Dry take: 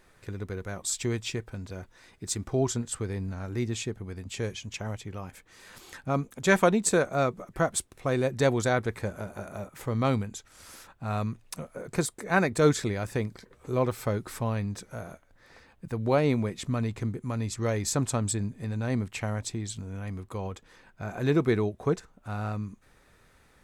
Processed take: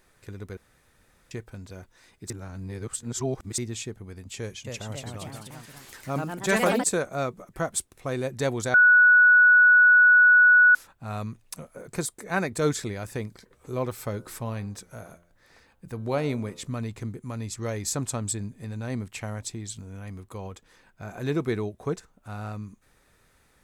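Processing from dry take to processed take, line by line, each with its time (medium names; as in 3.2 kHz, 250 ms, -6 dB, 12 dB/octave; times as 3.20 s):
0.57–1.31 s: room tone
2.30–3.58 s: reverse
4.37–6.84 s: ever faster or slower copies 275 ms, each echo +2 st, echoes 3
8.74–10.75 s: bleep 1.47 kHz -9.5 dBFS
14.10–16.73 s: de-hum 86.4 Hz, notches 18
whole clip: treble shelf 6.2 kHz +7 dB; trim -3 dB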